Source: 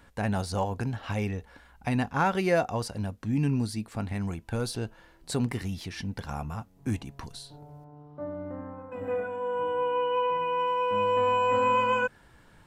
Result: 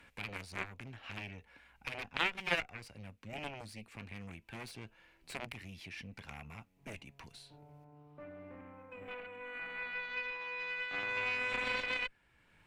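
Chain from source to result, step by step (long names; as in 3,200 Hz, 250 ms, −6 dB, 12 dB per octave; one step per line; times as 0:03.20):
harmonic generator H 3 −8 dB, 6 −24 dB, 8 −33 dB, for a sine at −13.5 dBFS
parametric band 2,400 Hz +14 dB 0.71 octaves
multiband upward and downward compressor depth 40%
level −3 dB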